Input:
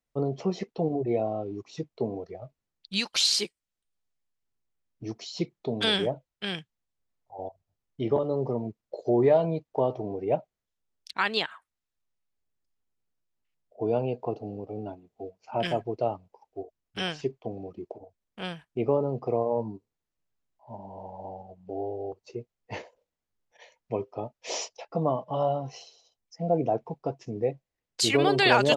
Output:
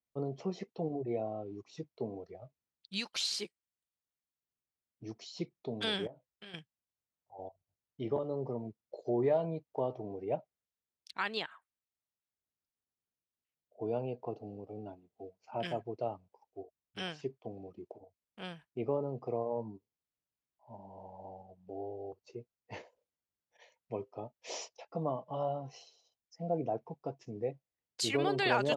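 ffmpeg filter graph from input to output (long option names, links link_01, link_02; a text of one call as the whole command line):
ffmpeg -i in.wav -filter_complex "[0:a]asettb=1/sr,asplit=3[link_01][link_02][link_03];[link_01]atrim=end=6.074[link_04];[link_02]atrim=start=6.07:end=6.54,asetpts=PTS-STARTPTS,afade=type=in:duration=0.004:curve=qsin,afade=type=out:start_time=0.466:duration=0.004:curve=qsin,acompressor=threshold=-40dB:ratio=4:attack=3.2:release=140:knee=1:detection=peak,asplit=2[link_05][link_06];[link_06]adelay=18,volume=-8.5dB[link_07];[link_05][link_07]amix=inputs=2:normalize=0,atrim=end_sample=20727[link_08];[link_03]atrim=start=6.536[link_09];[link_04][link_08]acrossfade=duration=0.004:curve1=hsin:curve2=qsin[link_10];[link_10][link_09]acrossfade=duration=0.004:curve1=qsin:curve2=hsin,highpass=55,adynamicequalizer=threshold=0.00708:dfrequency=2700:dqfactor=0.7:tfrequency=2700:tqfactor=0.7:attack=5:release=100:ratio=0.375:range=3:mode=cutabove:tftype=highshelf,volume=-8.5dB" out.wav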